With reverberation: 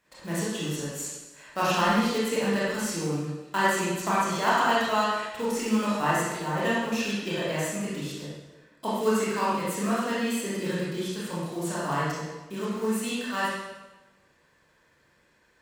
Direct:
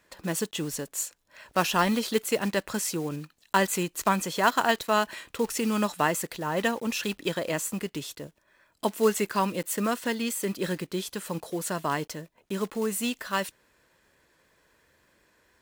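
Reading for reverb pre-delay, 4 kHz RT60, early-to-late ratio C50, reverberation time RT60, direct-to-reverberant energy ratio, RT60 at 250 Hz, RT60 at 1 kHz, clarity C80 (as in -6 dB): 22 ms, 1.0 s, -2.5 dB, 1.1 s, -9.0 dB, 1.2 s, 1.1 s, 1.0 dB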